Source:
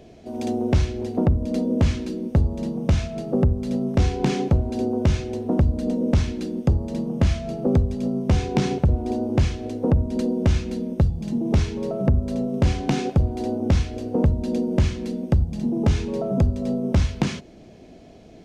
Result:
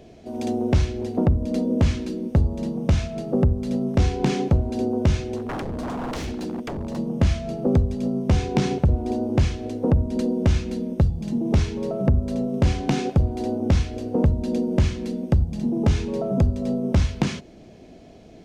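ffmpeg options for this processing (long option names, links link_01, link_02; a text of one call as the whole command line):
ffmpeg -i in.wav -filter_complex "[0:a]asplit=3[link_01][link_02][link_03];[link_01]afade=type=out:start_time=5.36:duration=0.02[link_04];[link_02]aeval=exprs='0.0631*(abs(mod(val(0)/0.0631+3,4)-2)-1)':channel_layout=same,afade=type=in:start_time=5.36:duration=0.02,afade=type=out:start_time=6.96:duration=0.02[link_05];[link_03]afade=type=in:start_time=6.96:duration=0.02[link_06];[link_04][link_05][link_06]amix=inputs=3:normalize=0" out.wav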